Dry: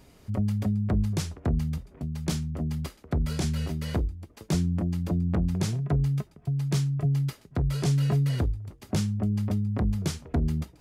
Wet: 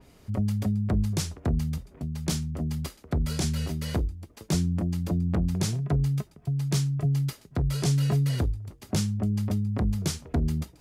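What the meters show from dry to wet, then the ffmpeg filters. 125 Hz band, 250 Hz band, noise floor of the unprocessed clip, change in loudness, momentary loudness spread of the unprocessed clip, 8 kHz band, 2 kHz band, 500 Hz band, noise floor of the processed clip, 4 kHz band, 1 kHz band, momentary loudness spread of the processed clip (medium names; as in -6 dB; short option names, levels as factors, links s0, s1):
0.0 dB, 0.0 dB, -56 dBFS, 0.0 dB, 6 LU, +4.5 dB, +0.5 dB, 0.0 dB, -56 dBFS, +3.0 dB, 0.0 dB, 6 LU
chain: -af "adynamicequalizer=threshold=0.00224:dfrequency=3600:dqfactor=0.7:tfrequency=3600:tqfactor=0.7:attack=5:release=100:ratio=0.375:range=2.5:mode=boostabove:tftype=highshelf"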